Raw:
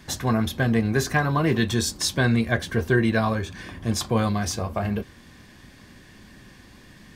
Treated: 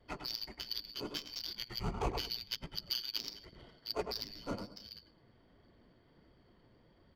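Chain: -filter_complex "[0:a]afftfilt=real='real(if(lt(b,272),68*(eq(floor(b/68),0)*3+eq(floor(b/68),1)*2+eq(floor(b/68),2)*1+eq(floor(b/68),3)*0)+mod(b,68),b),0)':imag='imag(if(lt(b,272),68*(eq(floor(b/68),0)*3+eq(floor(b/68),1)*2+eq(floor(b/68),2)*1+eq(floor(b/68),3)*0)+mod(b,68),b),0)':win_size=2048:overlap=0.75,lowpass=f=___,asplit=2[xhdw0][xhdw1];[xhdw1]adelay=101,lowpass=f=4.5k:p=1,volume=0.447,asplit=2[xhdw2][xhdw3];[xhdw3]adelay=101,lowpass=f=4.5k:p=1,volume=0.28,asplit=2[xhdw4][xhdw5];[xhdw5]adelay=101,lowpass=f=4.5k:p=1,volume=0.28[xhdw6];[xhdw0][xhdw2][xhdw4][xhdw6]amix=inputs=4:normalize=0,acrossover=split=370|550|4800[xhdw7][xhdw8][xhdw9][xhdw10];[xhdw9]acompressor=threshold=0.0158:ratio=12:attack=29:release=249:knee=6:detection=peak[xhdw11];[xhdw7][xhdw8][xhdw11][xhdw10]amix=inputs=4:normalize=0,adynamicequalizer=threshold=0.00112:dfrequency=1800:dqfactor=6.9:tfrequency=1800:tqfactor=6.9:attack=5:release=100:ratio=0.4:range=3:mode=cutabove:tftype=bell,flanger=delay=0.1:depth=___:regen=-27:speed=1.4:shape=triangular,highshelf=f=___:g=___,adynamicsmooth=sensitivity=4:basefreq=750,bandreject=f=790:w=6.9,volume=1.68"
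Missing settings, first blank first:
9.4k, 9.6, 2.4k, -6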